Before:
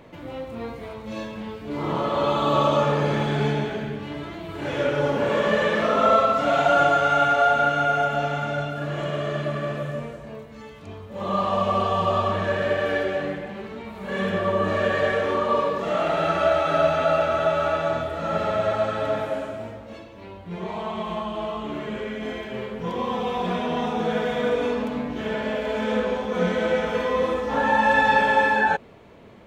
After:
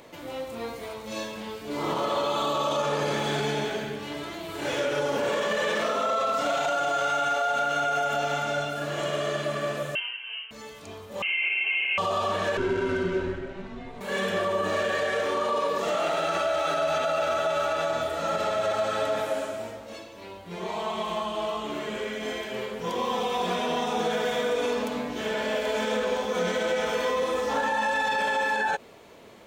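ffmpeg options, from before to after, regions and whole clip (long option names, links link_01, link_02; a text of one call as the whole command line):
ffmpeg -i in.wav -filter_complex "[0:a]asettb=1/sr,asplit=3[link_01][link_02][link_03];[link_01]atrim=end=9.954[link_04];[link_02]atrim=start=9.95:end=10.51,asetpts=PTS-STARTPTS,afade=type=in:duration=0.004:curve=qsin,afade=type=out:start_time=0.556:duration=0.004:curve=qsin,highpass=270,lowpass=frequency=2800:width_type=q:width=0.5098,lowpass=frequency=2800:width_type=q:width=0.6013,lowpass=frequency=2800:width_type=q:width=0.9,lowpass=frequency=2800:width_type=q:width=2.563,afreqshift=-3300[link_05];[link_03]atrim=start=10.506[link_06];[link_04][link_05]acrossfade=duration=0.004:curve1=hsin:curve2=qsin[link_07];[link_07][link_06]acrossfade=duration=0.004:curve1=qsin:curve2=hsin,asettb=1/sr,asplit=3[link_08][link_09][link_10];[link_08]atrim=end=11.224[link_11];[link_09]atrim=start=11.22:end=11.98,asetpts=PTS-STARTPTS,afade=type=in:duration=0.004:curve=qsin,afade=type=out:start_time=0.756:duration=0.004:curve=qsin,highpass=200,acrossover=split=360|1500[link_12][link_13][link_14];[link_12]acompressor=threshold=-46dB:ratio=4[link_15];[link_13]acompressor=threshold=-24dB:ratio=4[link_16];[link_14]acompressor=threshold=-37dB:ratio=4[link_17];[link_15][link_16][link_17]amix=inputs=3:normalize=0,lowpass=frequency=2800:width_type=q:width=0.5098,lowpass=frequency=2800:width_type=q:width=0.6013,lowpass=frequency=2800:width_type=q:width=0.9,lowpass=frequency=2800:width_type=q:width=2.563,afreqshift=-3300[link_18];[link_10]atrim=start=11.976[link_19];[link_11][link_18]acrossfade=duration=0.004:curve1=hsin:curve2=qsin[link_20];[link_20][link_19]acrossfade=duration=0.004:curve1=qsin:curve2=hsin,asettb=1/sr,asplit=3[link_21][link_22][link_23];[link_21]atrim=end=12.574[link_24];[link_22]atrim=start=12.57:end=14.01,asetpts=PTS-STARTPTS,afade=type=in:duration=0.004:curve=qsin,afade=type=out:start_time=1.436:duration=0.004:curve=qsin,tiltshelf=frequency=760:gain=5.5,adynamicsmooth=sensitivity=4.5:basefreq=5200,afreqshift=-200[link_25];[link_23]atrim=start=14.006[link_26];[link_24][link_25]acrossfade=duration=0.004:curve1=hsin:curve2=qsin[link_27];[link_27][link_26]acrossfade=duration=0.004:curve1=qsin:curve2=hsin,bass=frequency=250:gain=-9,treble=frequency=4000:gain=12,alimiter=limit=-18dB:level=0:latency=1:release=50" out.wav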